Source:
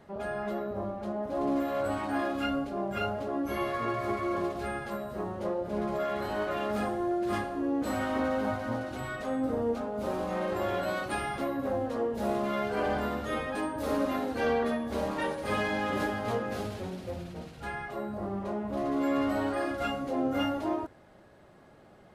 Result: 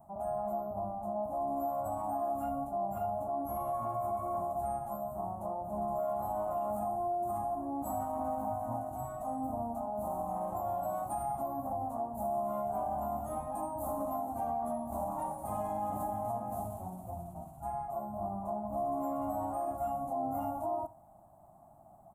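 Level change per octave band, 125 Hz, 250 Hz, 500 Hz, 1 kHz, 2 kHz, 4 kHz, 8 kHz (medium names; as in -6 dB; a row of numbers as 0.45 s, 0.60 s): -5.0 dB, -9.5 dB, -4.5 dB, +1.0 dB, under -25 dB, under -30 dB, -3.0 dB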